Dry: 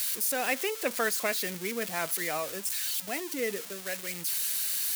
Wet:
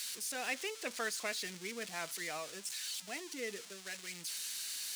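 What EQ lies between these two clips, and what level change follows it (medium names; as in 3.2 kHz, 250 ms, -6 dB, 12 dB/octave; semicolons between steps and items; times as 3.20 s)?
distance through air 100 m; pre-emphasis filter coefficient 0.8; band-stop 550 Hz, Q 14; +3.5 dB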